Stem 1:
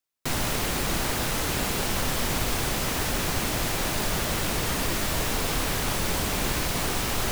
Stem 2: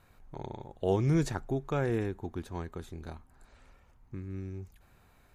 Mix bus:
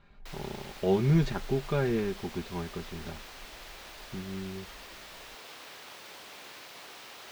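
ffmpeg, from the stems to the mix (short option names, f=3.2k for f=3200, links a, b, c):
-filter_complex "[0:a]highpass=110,acrossover=split=360 4600:gain=0.178 1 0.0794[a][b][c];[a][b][c]amix=inputs=3:normalize=0,volume=-19dB[d];[1:a]lowpass=f=4k:w=0.5412,lowpass=f=4k:w=1.3066,lowshelf=f=370:g=5.5,aecho=1:1:5:0.69,volume=-2.5dB[e];[d][e]amix=inputs=2:normalize=0,aemphasis=mode=production:type=75kf"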